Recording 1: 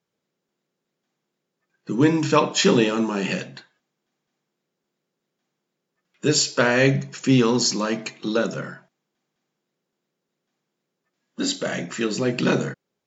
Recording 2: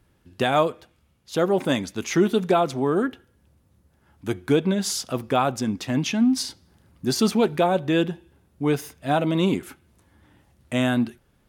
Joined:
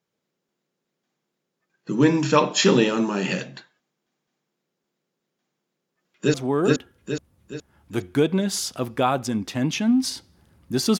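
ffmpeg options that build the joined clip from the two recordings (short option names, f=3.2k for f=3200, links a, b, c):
-filter_complex "[0:a]apad=whole_dur=10.99,atrim=end=10.99,atrim=end=6.342[a];[1:a]atrim=start=2.668:end=7.32[b];[a][b]acrossfade=d=0.004:c1=hsin:c2=hsin,asplit=2[c][d];[d]afade=t=in:st=5.57:d=0.01,afade=t=out:st=6.34:d=0.01,aecho=0:1:420|840|1260|1680|2100|2520:0.944061|0.424827|0.191172|0.0860275|0.0387124|0.0174206[e];[c][e]amix=inputs=2:normalize=0"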